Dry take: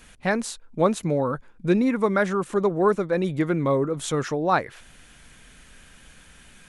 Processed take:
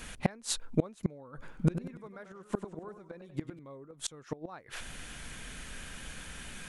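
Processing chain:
gate with flip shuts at −18 dBFS, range −32 dB
0:01.27–0:03.59: feedback echo with a swinging delay time 97 ms, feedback 44%, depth 146 cents, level −10 dB
level +5.5 dB

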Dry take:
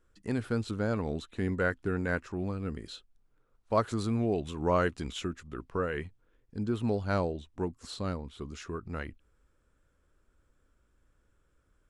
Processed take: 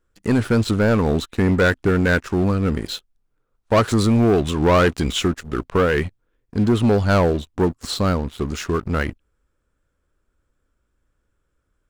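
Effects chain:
leveller curve on the samples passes 3
level +5 dB

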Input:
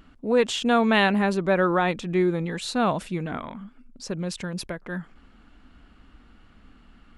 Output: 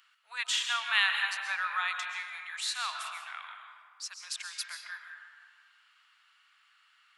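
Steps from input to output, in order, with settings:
Bessel high-pass filter 1,900 Hz, order 8
comb and all-pass reverb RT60 1.9 s, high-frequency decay 0.5×, pre-delay 90 ms, DRR 3.5 dB

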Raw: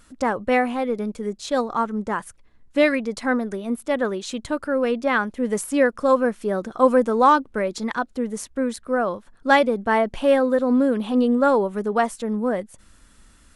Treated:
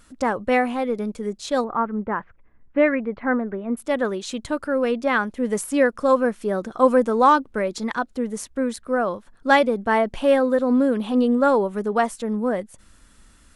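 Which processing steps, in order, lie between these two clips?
0:01.64–0:03.77: inverse Chebyshev low-pass filter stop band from 8,700 Hz, stop band 70 dB

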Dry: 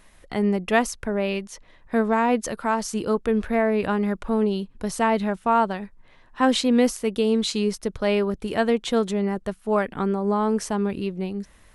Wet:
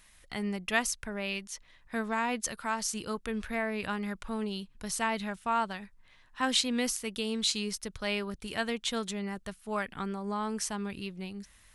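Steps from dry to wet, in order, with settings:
guitar amp tone stack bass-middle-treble 5-5-5
level +6 dB

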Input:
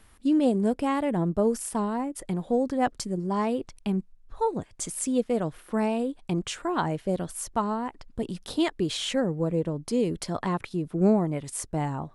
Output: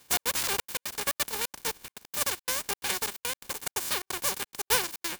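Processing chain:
compressing power law on the bin magnitudes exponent 0.18
notch comb filter 280 Hz
gate pattern "xx.xxxx.x.xxx.x" 75 BPM −60 dB
wrong playback speed 33 rpm record played at 78 rpm

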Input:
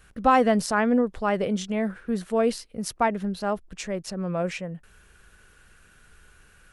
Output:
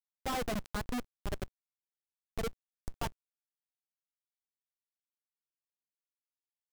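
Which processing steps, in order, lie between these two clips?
spectral dynamics exaggerated over time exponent 3
comparator with hysteresis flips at −23.5 dBFS
bit-depth reduction 10 bits, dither none
level −1 dB

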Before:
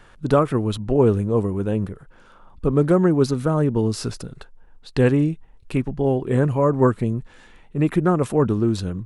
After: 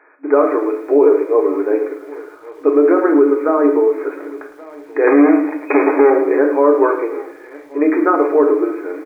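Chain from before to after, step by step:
0:05.07–0:06.10: power curve on the samples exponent 0.35
automatic gain control gain up to 4 dB
on a send: single-tap delay 1,128 ms −22.5 dB
on the sum: flanger 0.41 Hz, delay 6.3 ms, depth 1.1 ms, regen −56%
in parallel at −9.5 dB: bit reduction 6 bits
on the sum: convolution reverb RT60 0.55 s, pre-delay 5 ms, DRR 3.5 dB
brick-wall band-pass 270–2,500 Hz
boost into a limiter +8 dB
feedback echo at a low word length 108 ms, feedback 35%, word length 7 bits, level −12.5 dB
level −2 dB

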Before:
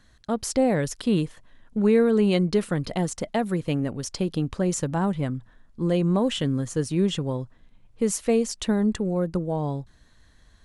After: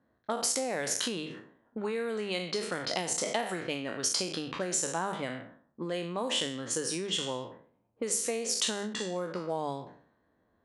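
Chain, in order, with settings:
peak hold with a decay on every bin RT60 0.56 s
high-shelf EQ 6,000 Hz +9 dB
mains-hum notches 50/100/150/200 Hz
downward compressor 16 to 1, threshold −26 dBFS, peak gain reduction 12.5 dB
meter weighting curve A
low-pass that shuts in the quiet parts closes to 450 Hz, open at −30 dBFS
level +2 dB

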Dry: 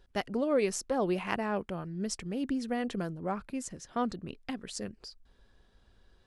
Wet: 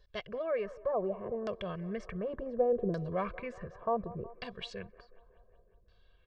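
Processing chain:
source passing by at 0:02.82, 18 m/s, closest 16 metres
high-shelf EQ 7,600 Hz −5.5 dB
comb filter 1.8 ms, depth 98%
in parallel at +2.5 dB: brickwall limiter −37.5 dBFS, peak gain reduction 17.5 dB
on the sum: auto-filter low-pass saw down 0.68 Hz 330–5,100 Hz
on a send: delay with a band-pass on its return 184 ms, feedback 67%, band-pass 740 Hz, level −17.5 dB
on the sum: tape wow and flutter 17 cents
level −4 dB

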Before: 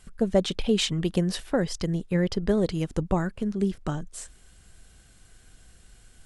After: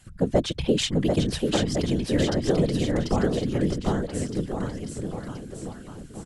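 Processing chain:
random phases in short frames
bouncing-ball delay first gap 740 ms, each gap 0.9×, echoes 5

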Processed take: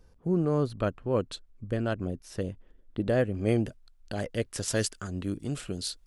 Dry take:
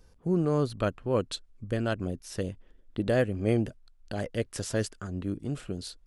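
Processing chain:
high-shelf EQ 2,200 Hz −5.5 dB, from 0:03.34 +2 dB, from 0:04.68 +8.5 dB

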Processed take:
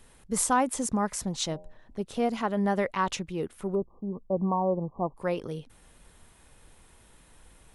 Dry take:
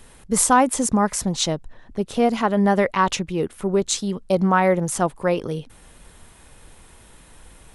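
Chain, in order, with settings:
0:01.47–0:02.02: hum removal 88.06 Hz, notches 11
0:03.75–0:05.17: linear-phase brick-wall low-pass 1,200 Hz
level −8.5 dB

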